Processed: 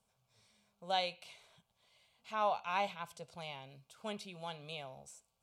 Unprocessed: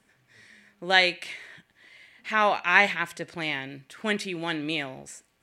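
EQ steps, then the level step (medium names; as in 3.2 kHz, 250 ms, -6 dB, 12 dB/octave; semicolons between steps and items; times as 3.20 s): dynamic bell 8.1 kHz, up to -7 dB, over -44 dBFS, Q 0.81; static phaser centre 760 Hz, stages 4; -8.5 dB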